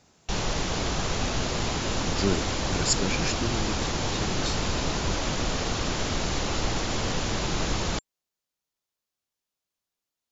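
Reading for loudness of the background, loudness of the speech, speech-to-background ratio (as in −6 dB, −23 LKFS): −28.5 LKFS, −31.5 LKFS, −3.0 dB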